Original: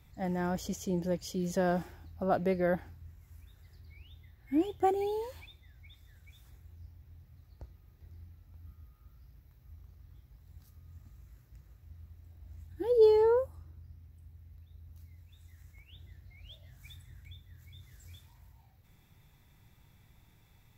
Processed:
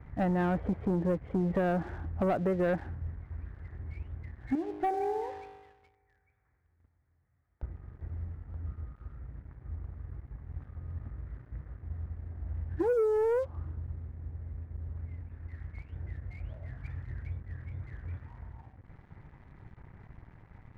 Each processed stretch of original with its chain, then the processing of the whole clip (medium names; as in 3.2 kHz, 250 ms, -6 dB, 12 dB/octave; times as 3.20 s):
4.55–7.63 s: tilt EQ +3 dB/octave + feedback comb 51 Hz, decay 1.9 s, mix 70%
whole clip: steep low-pass 2 kHz 48 dB/octave; compression 10:1, threshold -36 dBFS; waveshaping leveller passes 2; trim +5 dB